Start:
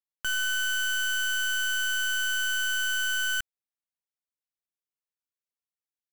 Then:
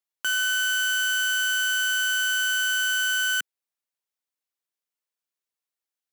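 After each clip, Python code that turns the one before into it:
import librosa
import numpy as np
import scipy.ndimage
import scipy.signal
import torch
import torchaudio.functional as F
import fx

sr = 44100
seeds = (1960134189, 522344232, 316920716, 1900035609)

y = scipy.signal.sosfilt(scipy.signal.bessel(4, 310.0, 'highpass', norm='mag', fs=sr, output='sos'), x)
y = F.gain(torch.from_numpy(y), 4.0).numpy()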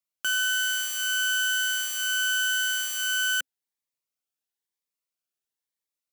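y = fx.notch_cascade(x, sr, direction='rising', hz=1.0)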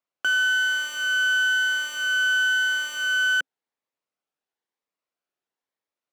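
y = fx.bandpass_q(x, sr, hz=630.0, q=0.53)
y = F.gain(torch.from_numpy(y), 9.0).numpy()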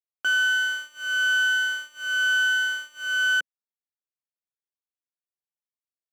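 y = fx.upward_expand(x, sr, threshold_db=-34.0, expansion=2.5)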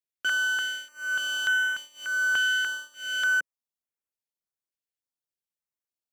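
y = fx.filter_held_notch(x, sr, hz=3.4, low_hz=920.0, high_hz=4300.0)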